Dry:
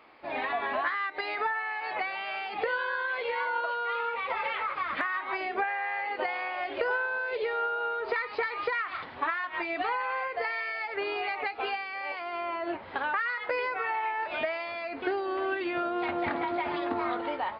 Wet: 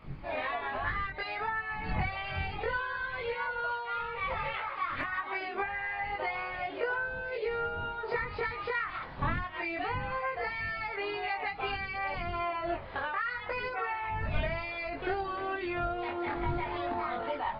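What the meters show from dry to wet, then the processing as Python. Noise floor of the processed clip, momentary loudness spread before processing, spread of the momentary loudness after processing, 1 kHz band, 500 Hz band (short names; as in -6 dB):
-41 dBFS, 4 LU, 2 LU, -3.0 dB, -3.5 dB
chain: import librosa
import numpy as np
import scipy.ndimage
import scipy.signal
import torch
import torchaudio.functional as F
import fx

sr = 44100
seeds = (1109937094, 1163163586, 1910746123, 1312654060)

y = fx.dmg_wind(x, sr, seeds[0], corner_hz=120.0, level_db=-41.0)
y = fx.chorus_voices(y, sr, voices=2, hz=0.29, base_ms=22, depth_ms=1.2, mix_pct=50)
y = fx.rider(y, sr, range_db=3, speed_s=0.5)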